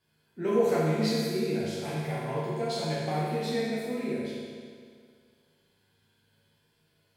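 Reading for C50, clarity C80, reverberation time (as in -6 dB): -2.5 dB, -0.5 dB, 2.0 s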